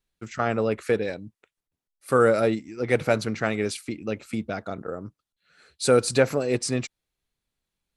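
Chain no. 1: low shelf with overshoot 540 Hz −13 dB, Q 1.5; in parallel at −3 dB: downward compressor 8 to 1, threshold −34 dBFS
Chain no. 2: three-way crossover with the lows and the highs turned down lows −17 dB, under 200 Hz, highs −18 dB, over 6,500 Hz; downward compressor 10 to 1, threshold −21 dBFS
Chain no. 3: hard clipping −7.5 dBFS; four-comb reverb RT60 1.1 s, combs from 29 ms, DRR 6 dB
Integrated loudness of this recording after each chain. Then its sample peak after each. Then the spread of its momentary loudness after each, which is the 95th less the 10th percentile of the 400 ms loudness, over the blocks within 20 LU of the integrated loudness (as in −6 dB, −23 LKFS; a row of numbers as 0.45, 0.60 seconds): −28.0, −29.5, −24.5 LKFS; −7.5, −11.5, −6.5 dBFS; 13, 10, 17 LU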